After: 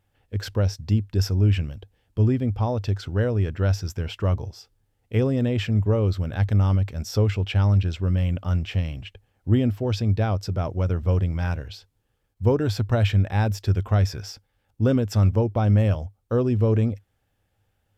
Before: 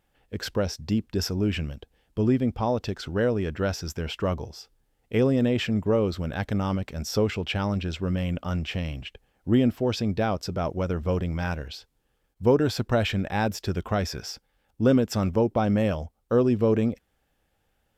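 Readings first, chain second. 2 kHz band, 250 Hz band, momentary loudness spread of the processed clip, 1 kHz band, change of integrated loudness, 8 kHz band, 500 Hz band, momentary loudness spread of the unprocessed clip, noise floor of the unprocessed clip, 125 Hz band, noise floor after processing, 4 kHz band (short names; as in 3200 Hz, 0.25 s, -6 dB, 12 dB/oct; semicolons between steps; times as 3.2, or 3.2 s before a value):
-2.0 dB, -1.5 dB, 9 LU, -2.0 dB, +3.0 dB, n/a, -2.0 dB, 13 LU, -72 dBFS, +8.5 dB, -72 dBFS, -2.0 dB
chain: bell 100 Hz +15 dB 0.46 oct; gain -2 dB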